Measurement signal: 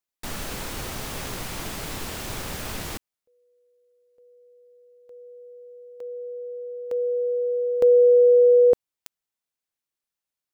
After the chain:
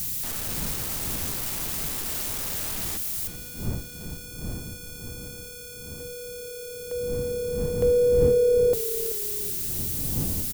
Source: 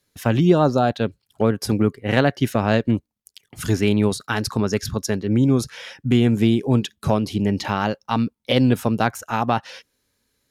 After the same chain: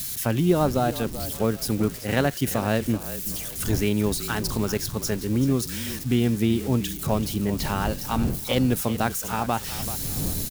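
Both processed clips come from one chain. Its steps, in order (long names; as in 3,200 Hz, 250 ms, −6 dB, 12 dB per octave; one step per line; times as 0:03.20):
spike at every zero crossing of −20.5 dBFS
wind on the microphone 170 Hz −31 dBFS
echo with shifted repeats 383 ms, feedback 36%, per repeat −35 Hz, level −13 dB
level −5 dB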